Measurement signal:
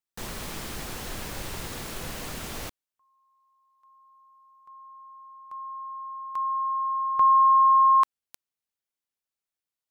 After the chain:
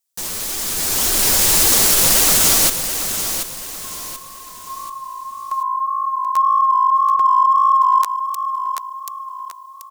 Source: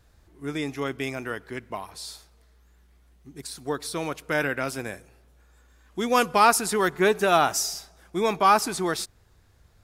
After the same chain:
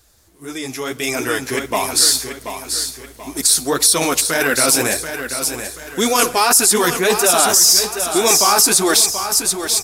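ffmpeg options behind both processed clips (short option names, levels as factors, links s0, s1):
-af "flanger=delay=2.5:depth=9.6:regen=3:speed=1.8:shape=sinusoidal,areverse,acompressor=threshold=0.0355:ratio=12:attack=0.49:release=71:knee=6:detection=rms,areverse,aecho=1:1:733|1466|2199|2932:0.355|0.138|0.054|0.021,dynaudnorm=f=100:g=21:m=4.22,bass=f=250:g=-5,treble=f=4000:g=14,alimiter=level_in=2.51:limit=0.891:release=50:level=0:latency=1,volume=0.891"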